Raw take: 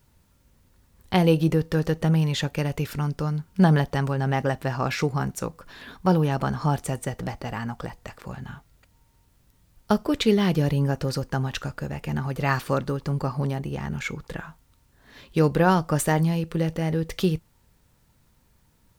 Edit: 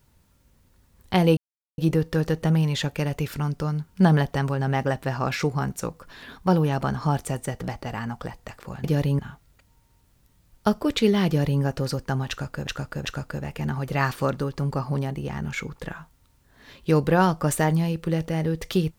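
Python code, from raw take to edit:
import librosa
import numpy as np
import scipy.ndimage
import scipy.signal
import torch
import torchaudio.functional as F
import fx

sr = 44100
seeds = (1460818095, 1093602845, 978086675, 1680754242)

y = fx.edit(x, sr, fx.insert_silence(at_s=1.37, length_s=0.41),
    fx.duplicate(start_s=10.51, length_s=0.35, to_s=8.43),
    fx.repeat(start_s=11.53, length_s=0.38, count=3), tone=tone)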